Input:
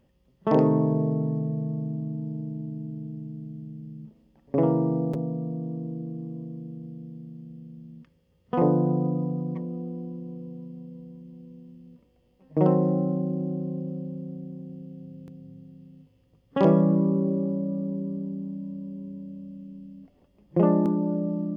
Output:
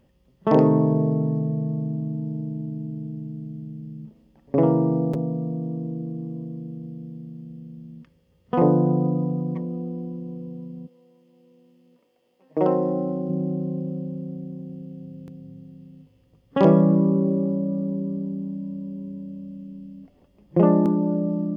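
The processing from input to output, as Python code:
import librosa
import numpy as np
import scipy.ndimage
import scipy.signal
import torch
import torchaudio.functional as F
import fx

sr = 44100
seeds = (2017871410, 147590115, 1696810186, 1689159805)

y = fx.highpass(x, sr, hz=fx.line((10.86, 750.0), (13.28, 230.0)), slope=12, at=(10.86, 13.28), fade=0.02)
y = y * 10.0 ** (3.5 / 20.0)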